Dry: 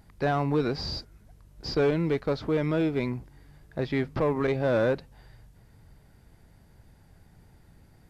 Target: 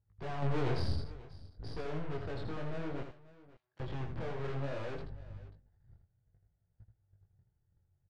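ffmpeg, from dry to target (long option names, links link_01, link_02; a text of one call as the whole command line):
ffmpeg -i in.wav -filter_complex "[0:a]asettb=1/sr,asplit=3[link_01][link_02][link_03];[link_01]atrim=end=4.544[link_04];[link_02]atrim=start=4.54:end=4.96,asetpts=PTS-STARTPTS,afade=type=in:duration=0.004:curve=qsin,afade=type=out:start_time=0.416:duration=0.004:curve=qsin,aeval=exprs='if(lt(val(0),0),0.708*val(0),val(0))':channel_layout=same[link_05];[link_03]atrim=start=4.956[link_06];[link_04][link_05]acrossfade=duration=0.004:curve1=hsin:curve2=qsin[link_07];[link_07][link_06]acrossfade=duration=0.004:curve1=qsin:curve2=hsin,lowpass=4300,agate=range=-28dB:threshold=-49dB:ratio=16:detection=peak,equalizer=frequency=100:width_type=o:width=0.67:gain=11,equalizer=frequency=250:width_type=o:width=0.67:gain=-11,equalizer=frequency=1000:width_type=o:width=0.67:gain=-7,equalizer=frequency=2500:width_type=o:width=0.67:gain=-11,aeval=exprs='(tanh(178*val(0)+0.6)-tanh(0.6))/178':channel_layout=same,asettb=1/sr,asplit=3[link_08][link_09][link_10];[link_08]atrim=end=0.424[link_11];[link_09]atrim=start=0.42:end=0.94,asetpts=PTS-STARTPTS,afade=type=in:duration=0.004:curve=qsin,afade=type=out:start_time=0.516:duration=0.004:curve=qsin,acontrast=69[link_12];[link_10]atrim=start=0.936[link_13];[link_11][link_12]acrossfade=duration=0.004:curve1=hsin:curve2=qsin[link_14];[link_14][link_13]acrossfade=duration=0.004:curve1=qsin:curve2=hsin,flanger=delay=17.5:depth=7.3:speed=0.59,asettb=1/sr,asplit=3[link_15][link_16][link_17];[link_15]atrim=end=3.034[link_18];[link_16]atrim=start=3.03:end=3.8,asetpts=PTS-STARTPTS,afade=type=in:duration=0.004:curve=qsin,afade=type=out:start_time=0.766:duration=0.004:curve=qsin,aderivative[link_19];[link_17]atrim=start=3.796[link_20];[link_18][link_19]acrossfade=duration=0.004:curve1=hsin:curve2=qsin[link_21];[link_21][link_20]acrossfade=duration=0.004:curve1=qsin:curve2=hsin,adynamicsmooth=sensitivity=5:basefreq=3300,flanger=delay=0.7:depth=6.6:regen=-75:speed=0.26:shape=sinusoidal,asplit=2[link_22][link_23];[link_23]aecho=0:1:81|537:0.447|0.112[link_24];[link_22][link_24]amix=inputs=2:normalize=0,volume=13dB" out.wav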